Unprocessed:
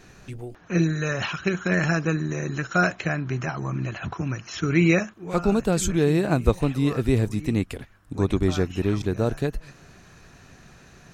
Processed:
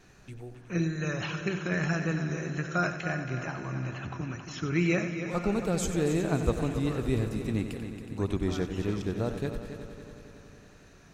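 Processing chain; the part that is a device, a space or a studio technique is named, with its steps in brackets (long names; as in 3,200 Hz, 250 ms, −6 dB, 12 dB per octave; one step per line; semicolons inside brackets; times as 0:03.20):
multi-head tape echo (echo machine with several playback heads 92 ms, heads first and third, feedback 69%, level −11 dB; tape wow and flutter 23 cents)
level −7.5 dB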